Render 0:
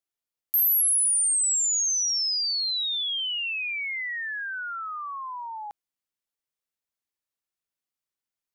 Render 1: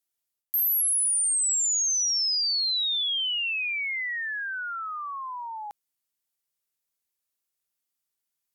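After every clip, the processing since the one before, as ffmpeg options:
-af "aemphasis=mode=production:type=cd,areverse,acompressor=threshold=-24dB:ratio=6,areverse"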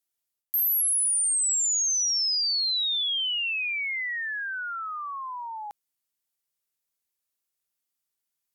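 -af anull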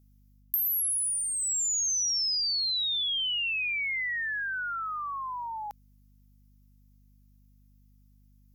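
-af "aexciter=amount=1.2:drive=5.2:freq=5k,acompressor=threshold=-27dB:ratio=6,aeval=exprs='val(0)+0.00112*(sin(2*PI*50*n/s)+sin(2*PI*2*50*n/s)/2+sin(2*PI*3*50*n/s)/3+sin(2*PI*4*50*n/s)/4+sin(2*PI*5*50*n/s)/5)':c=same"

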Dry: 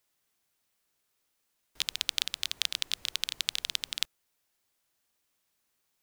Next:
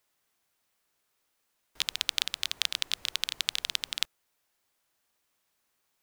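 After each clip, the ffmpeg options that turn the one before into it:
-af "equalizer=f=1k:w=0.46:g=4"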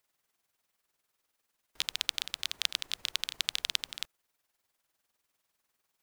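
-af "tremolo=f=20:d=0.61"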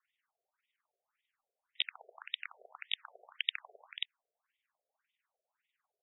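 -af "afftfilt=real='re*between(b*sr/1024,510*pow(2700/510,0.5+0.5*sin(2*PI*1.8*pts/sr))/1.41,510*pow(2700/510,0.5+0.5*sin(2*PI*1.8*pts/sr))*1.41)':imag='im*between(b*sr/1024,510*pow(2700/510,0.5+0.5*sin(2*PI*1.8*pts/sr))/1.41,510*pow(2700/510,0.5+0.5*sin(2*PI*1.8*pts/sr))*1.41)':win_size=1024:overlap=0.75,volume=2.5dB"

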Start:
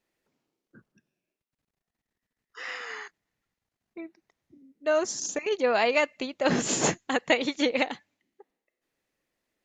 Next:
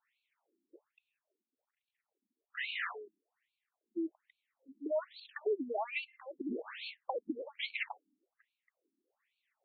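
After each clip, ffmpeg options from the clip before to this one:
-af "acompressor=threshold=-33dB:ratio=12,afftfilt=real='re*between(b*sr/1024,260*pow(3200/260,0.5+0.5*sin(2*PI*1.2*pts/sr))/1.41,260*pow(3200/260,0.5+0.5*sin(2*PI*1.2*pts/sr))*1.41)':imag='im*between(b*sr/1024,260*pow(3200/260,0.5+0.5*sin(2*PI*1.2*pts/sr))/1.41,260*pow(3200/260,0.5+0.5*sin(2*PI*1.2*pts/sr))*1.41)':win_size=1024:overlap=0.75,volume=5dB"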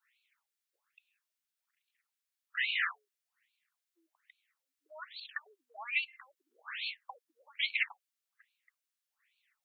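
-af "highpass=f=1.3k:w=0.5412,highpass=f=1.3k:w=1.3066,volume=6.5dB"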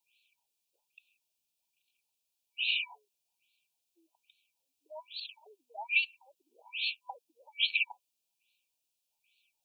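-af "afftfilt=real='re*(1-between(b*sr/4096,1000,2300))':imag='im*(1-between(b*sr/4096,1000,2300))':win_size=4096:overlap=0.75,volume=5.5dB"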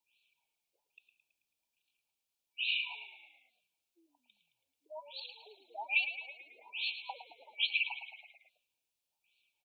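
-filter_complex "[0:a]highshelf=f=3k:g=-6,asplit=2[a][b];[b]asplit=6[c][d][e][f][g][h];[c]adelay=109,afreqshift=-41,volume=-10.5dB[i];[d]adelay=218,afreqshift=-82,volume=-15.5dB[j];[e]adelay=327,afreqshift=-123,volume=-20.6dB[k];[f]adelay=436,afreqshift=-164,volume=-25.6dB[l];[g]adelay=545,afreqshift=-205,volume=-30.6dB[m];[h]adelay=654,afreqshift=-246,volume=-35.7dB[n];[i][j][k][l][m][n]amix=inputs=6:normalize=0[o];[a][o]amix=inputs=2:normalize=0"

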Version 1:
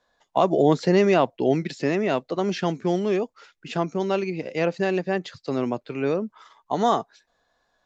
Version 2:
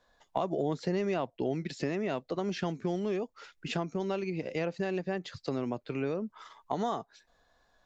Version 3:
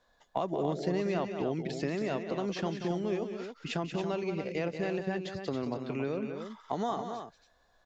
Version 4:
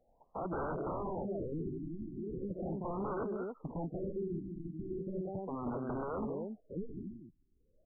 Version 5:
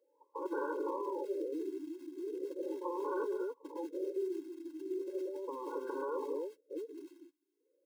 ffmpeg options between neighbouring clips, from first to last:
-af "lowshelf=f=94:g=9.5,acompressor=threshold=-32dB:ratio=3"
-af "aecho=1:1:183.7|277:0.355|0.398,volume=-1dB"
-af "highshelf=f=3.6k:g=9,aeval=exprs='0.0251*(abs(mod(val(0)/0.0251+3,4)-2)-1)':c=same,afftfilt=real='re*lt(b*sr/1024,360*pow(1600/360,0.5+0.5*sin(2*PI*0.38*pts/sr)))':imag='im*lt(b*sr/1024,360*pow(1600/360,0.5+0.5*sin(2*PI*0.38*pts/sr)))':win_size=1024:overlap=0.75,volume=1dB"
-filter_complex "[0:a]acrossover=split=130|330|550[a][b][c][d];[b]acrusher=bits=5:mode=log:mix=0:aa=0.000001[e];[a][e][c][d]amix=inputs=4:normalize=0,afftfilt=real='re*eq(mod(floor(b*sr/1024/280),2),1)':imag='im*eq(mod(floor(b*sr/1024/280),2),1)':win_size=1024:overlap=0.75,volume=3dB"

